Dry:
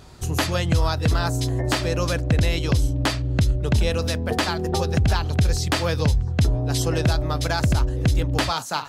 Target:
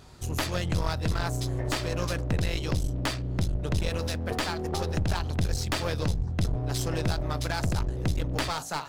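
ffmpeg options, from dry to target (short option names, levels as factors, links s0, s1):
-af "bandreject=f=55.86:t=h:w=4,bandreject=f=111.72:t=h:w=4,bandreject=f=167.58:t=h:w=4,bandreject=f=223.44:t=h:w=4,bandreject=f=279.3:t=h:w=4,bandreject=f=335.16:t=h:w=4,bandreject=f=391.02:t=h:w=4,bandreject=f=446.88:t=h:w=4,bandreject=f=502.74:t=h:w=4,bandreject=f=558.6:t=h:w=4,bandreject=f=614.46:t=h:w=4,bandreject=f=670.32:t=h:w=4,bandreject=f=726.18:t=h:w=4,bandreject=f=782.04:t=h:w=4,aeval=exprs='clip(val(0),-1,0.0473)':c=same,volume=0.596"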